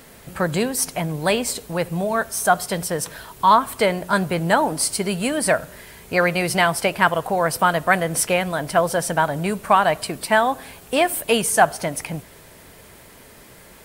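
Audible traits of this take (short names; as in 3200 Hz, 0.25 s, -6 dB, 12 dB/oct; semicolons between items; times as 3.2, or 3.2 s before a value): noise floor -46 dBFS; spectral tilt -4.5 dB/oct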